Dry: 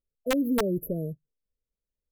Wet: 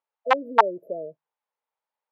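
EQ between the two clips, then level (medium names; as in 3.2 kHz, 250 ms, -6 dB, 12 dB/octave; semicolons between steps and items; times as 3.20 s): resonant high-pass 860 Hz, resonance Q 5.1; low-pass 2.6 kHz 12 dB/octave; distance through air 53 m; +8.0 dB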